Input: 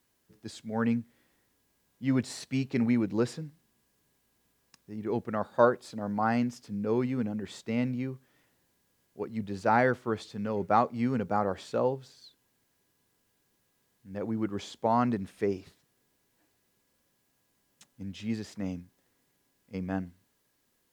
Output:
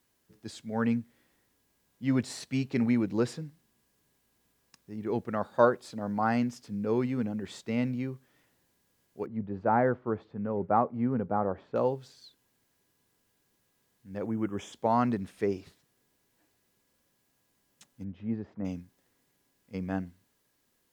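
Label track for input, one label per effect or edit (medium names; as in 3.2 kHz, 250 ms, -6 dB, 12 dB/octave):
9.260000	11.760000	low-pass 1.2 kHz
14.260000	14.730000	Butterworth band-stop 4.3 kHz, Q 1.9
18.040000	18.650000	low-pass 1.1 kHz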